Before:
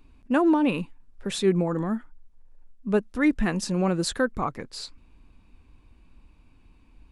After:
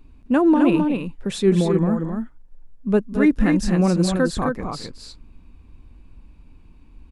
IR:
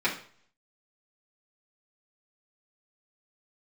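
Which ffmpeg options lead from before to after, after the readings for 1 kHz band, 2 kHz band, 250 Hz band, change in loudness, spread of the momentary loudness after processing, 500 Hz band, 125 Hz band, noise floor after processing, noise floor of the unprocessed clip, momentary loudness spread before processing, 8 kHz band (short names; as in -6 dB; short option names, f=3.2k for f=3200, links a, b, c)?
+3.0 dB, +2.0 dB, +6.5 dB, +5.5 dB, 14 LU, +5.0 dB, +8.0 dB, -49 dBFS, -57 dBFS, 16 LU, +1.5 dB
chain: -filter_complex "[0:a]lowshelf=f=460:g=7,asplit=2[a][b];[b]aecho=0:1:218.7|262.4:0.251|0.562[c];[a][c]amix=inputs=2:normalize=0"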